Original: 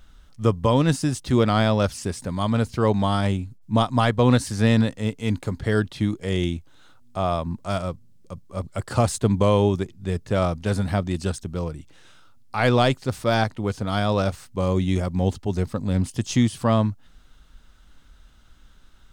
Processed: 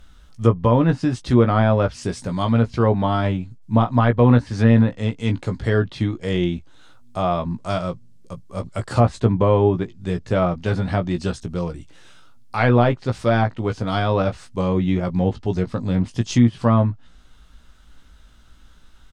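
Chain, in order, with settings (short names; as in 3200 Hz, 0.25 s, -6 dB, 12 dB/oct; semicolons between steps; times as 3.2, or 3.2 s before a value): treble ducked by the level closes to 1800 Hz, closed at -15.5 dBFS; doubler 17 ms -6.5 dB; gain +2 dB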